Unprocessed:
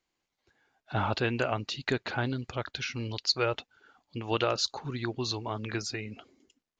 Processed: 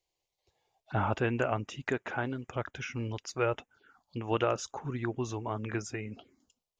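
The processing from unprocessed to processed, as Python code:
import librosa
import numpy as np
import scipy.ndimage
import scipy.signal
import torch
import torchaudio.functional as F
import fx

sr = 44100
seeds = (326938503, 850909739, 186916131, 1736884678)

y = fx.env_phaser(x, sr, low_hz=240.0, high_hz=4300.0, full_db=-35.0)
y = fx.low_shelf(y, sr, hz=170.0, db=-9.5, at=(1.89, 2.56))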